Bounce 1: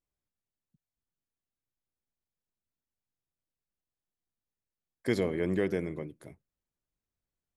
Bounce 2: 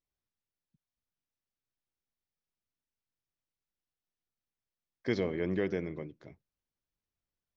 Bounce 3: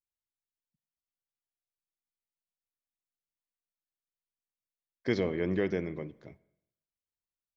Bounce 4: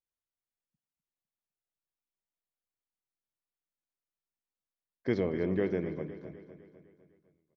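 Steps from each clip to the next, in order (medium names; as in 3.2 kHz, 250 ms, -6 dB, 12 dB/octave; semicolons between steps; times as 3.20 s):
elliptic low-pass 6 kHz; trim -1.5 dB
gate -56 dBFS, range -14 dB; on a send at -18.5 dB: reverberation RT60 0.80 s, pre-delay 44 ms; on the sum: trim +2 dB
treble shelf 2.5 kHz -11.5 dB; on a send: feedback delay 253 ms, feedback 53%, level -12 dB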